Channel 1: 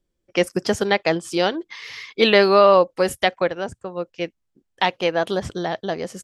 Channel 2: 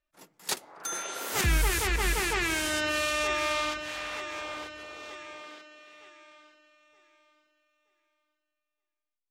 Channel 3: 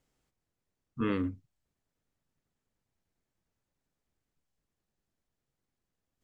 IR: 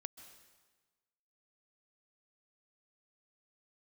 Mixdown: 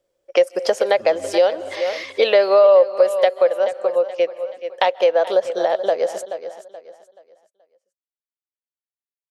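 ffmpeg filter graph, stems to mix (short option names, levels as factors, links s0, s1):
-filter_complex "[0:a]highpass=f=550:t=q:w=5.9,volume=1.19,asplit=3[s0][s1][s2];[s1]volume=0.501[s3];[s2]volume=0.211[s4];[2:a]volume=0.473,asplit=2[s5][s6];[s6]volume=0.398[s7];[3:a]atrim=start_sample=2205[s8];[s3][s8]afir=irnorm=-1:irlink=0[s9];[s4][s7]amix=inputs=2:normalize=0,aecho=0:1:428|856|1284|1712:1|0.31|0.0961|0.0298[s10];[s0][s5][s9][s10]amix=inputs=4:normalize=0,acompressor=threshold=0.141:ratio=2.5"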